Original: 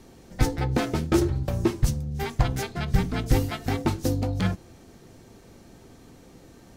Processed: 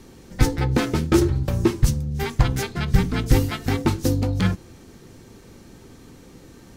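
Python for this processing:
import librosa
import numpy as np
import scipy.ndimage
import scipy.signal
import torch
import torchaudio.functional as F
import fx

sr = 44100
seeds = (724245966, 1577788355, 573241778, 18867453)

y = fx.peak_eq(x, sr, hz=680.0, db=-7.0, octaves=0.45)
y = y * 10.0 ** (4.5 / 20.0)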